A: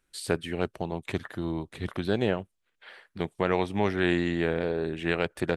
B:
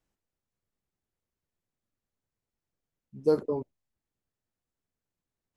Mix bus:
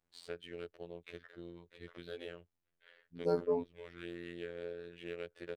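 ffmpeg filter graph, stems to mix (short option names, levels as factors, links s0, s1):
-filter_complex "[0:a]acrossover=split=100|870[s0][s1][s2];[s0]acompressor=threshold=0.00562:ratio=4[s3];[s1]acompressor=threshold=0.0316:ratio=4[s4];[s2]acompressor=threshold=0.02:ratio=4[s5];[s3][s4][s5]amix=inputs=3:normalize=0,firequalizer=gain_entry='entry(280,0);entry(440,13);entry(800,-3);entry(1500,7);entry(3000,12)':delay=0.05:min_phase=1,adynamicsmooth=sensitivity=4:basefreq=3300,volume=0.133[s6];[1:a]volume=1.12,asplit=2[s7][s8];[s8]apad=whole_len=249697[s9];[s6][s9]sidechaincompress=threshold=0.0126:ratio=5:attack=7.7:release=420[s10];[s10][s7]amix=inputs=2:normalize=0,highshelf=f=4400:g=-8.5,afftfilt=real='hypot(re,im)*cos(PI*b)':imag='0':win_size=2048:overlap=0.75"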